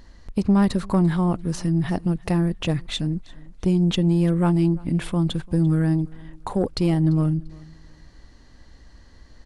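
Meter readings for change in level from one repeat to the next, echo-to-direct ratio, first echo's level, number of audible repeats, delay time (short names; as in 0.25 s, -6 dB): -11.5 dB, -23.0 dB, -23.5 dB, 2, 0.343 s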